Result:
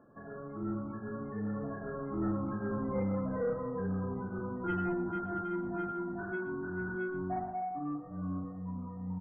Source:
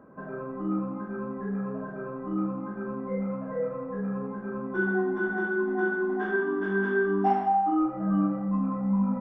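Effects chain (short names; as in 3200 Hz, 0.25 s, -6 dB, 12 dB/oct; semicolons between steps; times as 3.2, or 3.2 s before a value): octaver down 1 oct, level -6 dB; Doppler pass-by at 3.04, 24 m/s, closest 27 m; reverse; upward compressor, threshold -50 dBFS; reverse; soft clip -26.5 dBFS, distortion -17 dB; loudest bins only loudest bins 64; echo 0.119 s -15.5 dB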